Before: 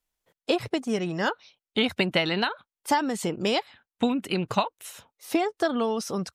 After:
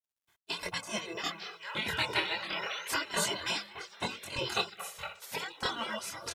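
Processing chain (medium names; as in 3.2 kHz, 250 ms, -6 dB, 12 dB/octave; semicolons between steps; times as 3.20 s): high-pass 50 Hz; peaking EQ 170 Hz +10.5 dB 0.32 oct; hum notches 50/100/150/200/250/300/350/400/450 Hz; comb 2 ms, depth 97%; repeats whose band climbs or falls 230 ms, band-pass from 910 Hz, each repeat 0.7 oct, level -3 dB; 1.62–2.86 s: painted sound rise 2.6–6.6 kHz -27 dBFS; tremolo saw down 1.6 Hz, depth 70%; chorus voices 4, 0.41 Hz, delay 24 ms, depth 1.3 ms; spectral gate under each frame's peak -15 dB weak; companded quantiser 8-bit; vibrato 0.32 Hz 50 cents; 4.77–5.44 s: flutter echo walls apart 10.4 m, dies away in 0.35 s; trim +5.5 dB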